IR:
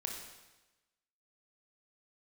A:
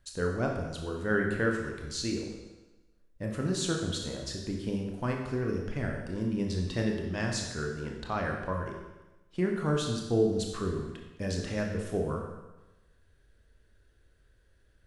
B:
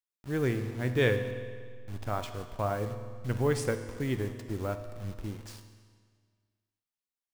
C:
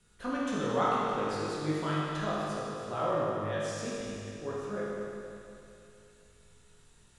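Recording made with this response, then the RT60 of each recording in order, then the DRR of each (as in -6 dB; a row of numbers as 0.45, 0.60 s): A; 1.1, 1.8, 2.8 s; 0.5, 7.5, -8.0 dB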